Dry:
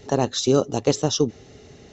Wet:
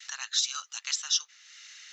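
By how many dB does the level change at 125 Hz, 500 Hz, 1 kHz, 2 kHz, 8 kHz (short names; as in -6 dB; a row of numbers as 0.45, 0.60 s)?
under -40 dB, under -40 dB, -16.5 dB, 0.0 dB, n/a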